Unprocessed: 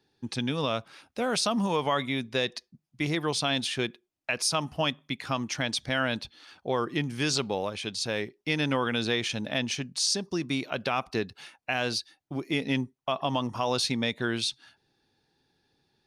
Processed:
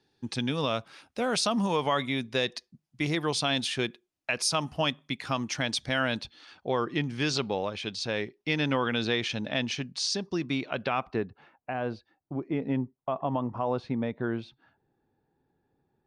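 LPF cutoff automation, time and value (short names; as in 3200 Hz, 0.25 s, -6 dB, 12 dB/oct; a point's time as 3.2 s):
6.03 s 11000 Hz
6.69 s 5100 Hz
10.16 s 5100 Hz
11.03 s 2700 Hz
11.31 s 1100 Hz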